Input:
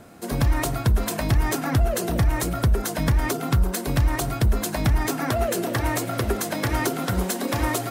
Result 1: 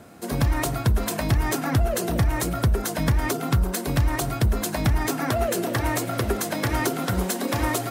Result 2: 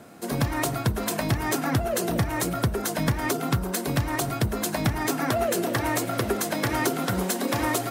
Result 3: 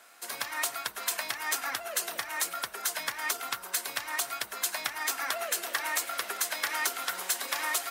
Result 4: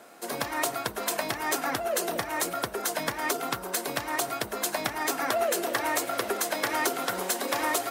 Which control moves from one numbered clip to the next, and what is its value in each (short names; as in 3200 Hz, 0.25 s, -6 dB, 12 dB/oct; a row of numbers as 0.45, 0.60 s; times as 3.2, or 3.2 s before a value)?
HPF, cutoff: 46, 120, 1300, 470 Hz